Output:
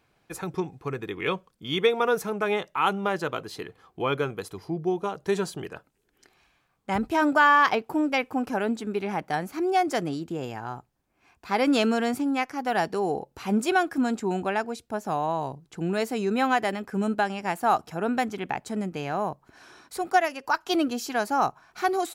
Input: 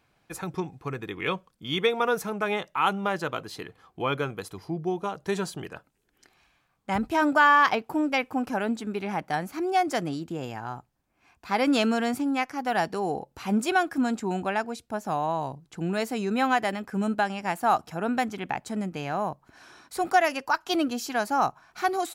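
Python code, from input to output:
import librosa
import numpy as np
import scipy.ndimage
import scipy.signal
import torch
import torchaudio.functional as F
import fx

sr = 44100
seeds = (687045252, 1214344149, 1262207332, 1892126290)

y = fx.peak_eq(x, sr, hz=410.0, db=4.0, octaves=0.51)
y = fx.upward_expand(y, sr, threshold_db=-27.0, expansion=1.5, at=(19.97, 20.43), fade=0.02)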